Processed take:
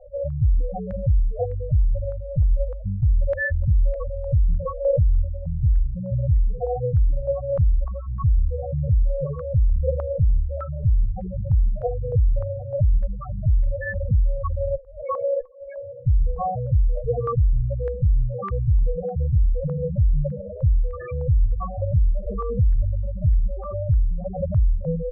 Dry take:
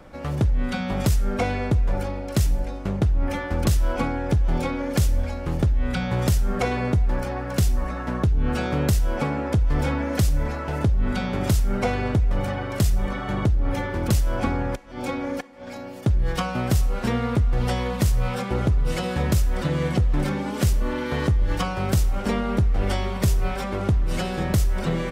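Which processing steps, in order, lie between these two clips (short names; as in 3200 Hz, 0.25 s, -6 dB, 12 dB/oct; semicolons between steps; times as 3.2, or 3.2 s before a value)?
minimum comb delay 1.7 ms; loudest bins only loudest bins 4; stepped low-pass 3.3 Hz 600–2000 Hz; gain +3 dB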